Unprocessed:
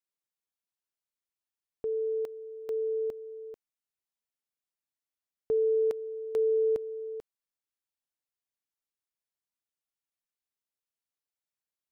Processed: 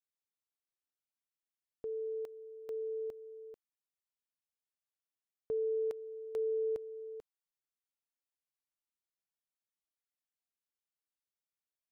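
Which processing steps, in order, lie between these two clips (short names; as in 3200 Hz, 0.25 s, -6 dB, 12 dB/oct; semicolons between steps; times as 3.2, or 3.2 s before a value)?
dynamic EQ 230 Hz, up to -4 dB, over -44 dBFS, Q 1.4; gain -7 dB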